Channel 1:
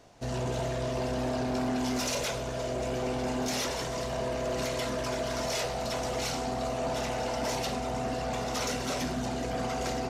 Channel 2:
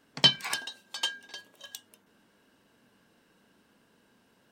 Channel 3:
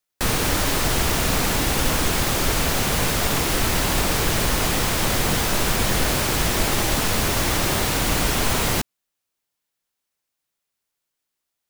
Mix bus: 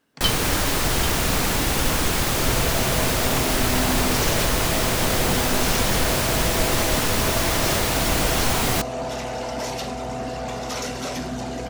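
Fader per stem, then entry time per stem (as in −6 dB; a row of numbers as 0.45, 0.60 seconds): +3.0, −3.5, −0.5 decibels; 2.15, 0.00, 0.00 seconds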